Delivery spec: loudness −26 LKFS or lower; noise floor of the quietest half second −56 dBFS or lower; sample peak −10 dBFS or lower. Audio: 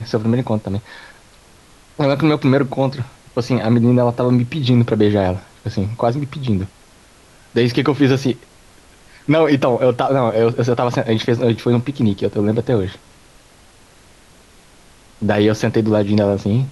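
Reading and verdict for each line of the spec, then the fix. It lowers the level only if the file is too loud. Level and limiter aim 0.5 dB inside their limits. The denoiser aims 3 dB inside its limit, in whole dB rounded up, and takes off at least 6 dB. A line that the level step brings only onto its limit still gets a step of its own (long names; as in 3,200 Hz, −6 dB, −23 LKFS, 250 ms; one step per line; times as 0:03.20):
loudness −17.5 LKFS: out of spec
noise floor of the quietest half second −47 dBFS: out of spec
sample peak −3.0 dBFS: out of spec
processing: broadband denoise 6 dB, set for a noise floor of −47 dBFS
level −9 dB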